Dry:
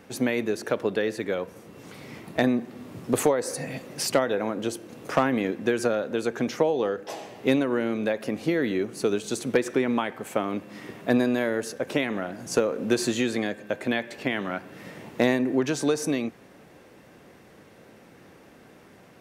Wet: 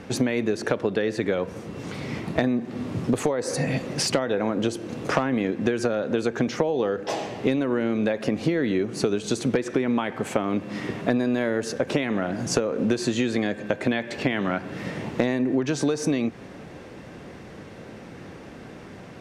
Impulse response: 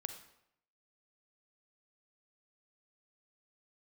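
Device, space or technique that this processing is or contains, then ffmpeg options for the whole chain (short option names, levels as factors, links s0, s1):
ASMR close-microphone chain: -af "lowshelf=f=200:g=7,acompressor=threshold=0.0398:ratio=6,lowpass=6700,highshelf=f=11000:g=4,volume=2.51"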